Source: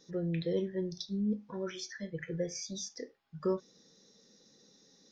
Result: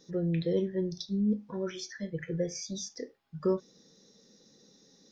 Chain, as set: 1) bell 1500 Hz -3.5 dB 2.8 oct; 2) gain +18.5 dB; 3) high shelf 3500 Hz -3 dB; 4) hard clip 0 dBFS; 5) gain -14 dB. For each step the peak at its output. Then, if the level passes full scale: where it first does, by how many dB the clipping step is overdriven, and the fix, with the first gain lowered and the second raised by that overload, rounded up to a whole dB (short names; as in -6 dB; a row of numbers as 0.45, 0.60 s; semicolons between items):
-21.5, -3.0, -3.0, -3.0, -17.0 dBFS; no overload